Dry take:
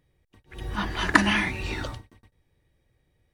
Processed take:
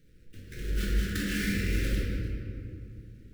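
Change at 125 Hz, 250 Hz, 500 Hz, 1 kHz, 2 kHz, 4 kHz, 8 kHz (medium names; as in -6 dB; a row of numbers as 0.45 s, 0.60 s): +3.0 dB, -3.5 dB, -3.5 dB, -22.0 dB, -10.5 dB, -7.5 dB, -1.5 dB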